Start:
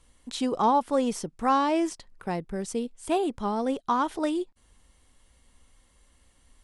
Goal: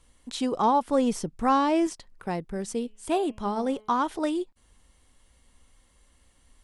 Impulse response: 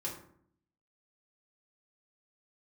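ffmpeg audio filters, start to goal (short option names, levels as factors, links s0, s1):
-filter_complex "[0:a]asettb=1/sr,asplit=3[s0][s1][s2];[s0]atrim=end=0.884[s3];[s1]atrim=start=0.88:end=1.87,asetpts=PTS-STARTPTS,afade=t=in:d=0.004:c=qsin,afade=t=out:st=0.986:d=0.004:c=qsin,lowshelf=f=210:g=7[s4];[s2]atrim=start=1.866[s5];[s3][s4]acrossfade=d=0.004:c1=hsin:c2=qsin[s6];[s6][s5]acrossfade=d=0.004:c1=qsin:c2=hsin,asettb=1/sr,asplit=3[s7][s8][s9];[s7]atrim=end=2.534[s10];[s8]atrim=start=2.53:end=3.9,asetpts=PTS-STARTPTS,afade=t=in:d=0.004:c=qsin,afade=t=out:st=1.366:d=0.004:c=qsin,bandreject=f=214:t=h:w=4,bandreject=f=428:t=h:w=4,bandreject=f=642:t=h:w=4,bandreject=f=856:t=h:w=4,bandreject=f=1070:t=h:w=4,bandreject=f=1284:t=h:w=4,bandreject=f=1498:t=h:w=4,bandreject=f=1712:t=h:w=4,bandreject=f=1926:t=h:w=4,bandreject=f=2140:t=h:w=4,bandreject=f=2354:t=h:w=4,bandreject=f=2568:t=h:w=4,bandreject=f=2782:t=h:w=4,bandreject=f=2996:t=h:w=4,bandreject=f=3210:t=h:w=4[s11];[s9]atrim=start=3.896[s12];[s10][s11]acrossfade=d=0.004:c1=hsin:c2=qsin[s13];[s13][s12]acrossfade=d=0.004:c1=qsin:c2=hsin"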